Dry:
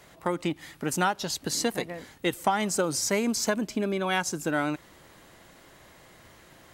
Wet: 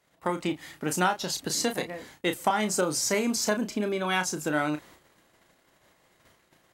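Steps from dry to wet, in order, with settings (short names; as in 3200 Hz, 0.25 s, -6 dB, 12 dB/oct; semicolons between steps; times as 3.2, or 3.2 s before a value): gate -51 dBFS, range -17 dB; low shelf 130 Hz -5.5 dB; doubler 33 ms -8 dB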